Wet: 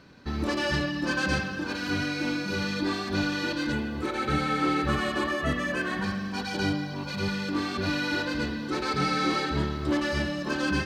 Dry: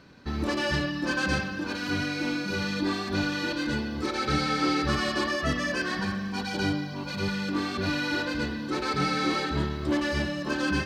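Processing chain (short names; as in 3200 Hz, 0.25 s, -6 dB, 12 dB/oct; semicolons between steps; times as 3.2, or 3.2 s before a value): 3.72–6.04 bell 5100 Hz -13 dB 0.53 oct; reverb RT60 3.3 s, pre-delay 95 ms, DRR 16.5 dB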